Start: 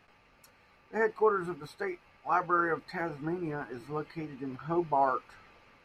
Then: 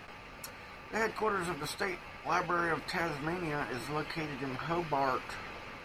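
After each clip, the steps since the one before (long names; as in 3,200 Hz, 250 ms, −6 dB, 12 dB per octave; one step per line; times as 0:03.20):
every bin compressed towards the loudest bin 2 to 1
level −3 dB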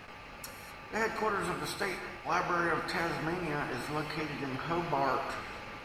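reverb whose tail is shaped and stops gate 280 ms flat, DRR 5.5 dB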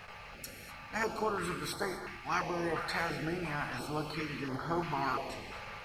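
notch on a step sequencer 2.9 Hz 290–2,600 Hz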